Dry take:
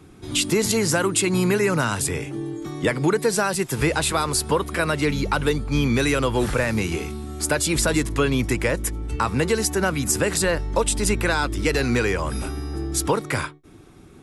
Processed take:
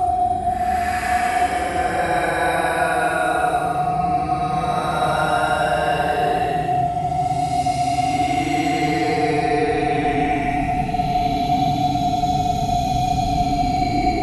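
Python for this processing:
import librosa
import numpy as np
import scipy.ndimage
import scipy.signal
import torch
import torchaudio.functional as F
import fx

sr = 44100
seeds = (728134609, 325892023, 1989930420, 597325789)

y = x + 10.0 ** (-23.0 / 20.0) * np.sin(2.0 * np.pi * 720.0 * np.arange(len(x)) / sr)
y = fx.paulstretch(y, sr, seeds[0], factor=27.0, window_s=0.05, from_s=4.71)
y = fx.peak_eq(y, sr, hz=820.0, db=11.5, octaves=0.38)
y = fx.rider(y, sr, range_db=10, speed_s=2.0)
y = y * librosa.db_to_amplitude(-2.0)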